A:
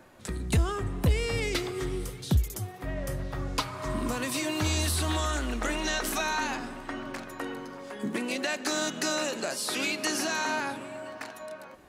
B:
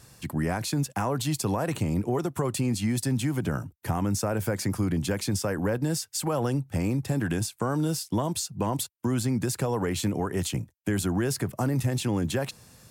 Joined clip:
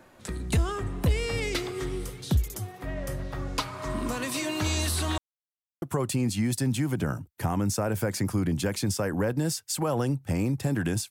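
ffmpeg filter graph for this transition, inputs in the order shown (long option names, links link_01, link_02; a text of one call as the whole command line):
ffmpeg -i cue0.wav -i cue1.wav -filter_complex "[0:a]apad=whole_dur=11.1,atrim=end=11.1,asplit=2[link_01][link_02];[link_01]atrim=end=5.18,asetpts=PTS-STARTPTS,afade=type=out:start_time=5.176:duration=0.004:curve=hsin[link_03];[link_02]atrim=start=5.18:end=5.82,asetpts=PTS-STARTPTS,volume=0[link_04];[1:a]atrim=start=2.27:end=7.55,asetpts=PTS-STARTPTS,afade=type=in:duration=0.004:curve=hsin[link_05];[link_03][link_04][link_05]concat=n=3:v=0:a=1" out.wav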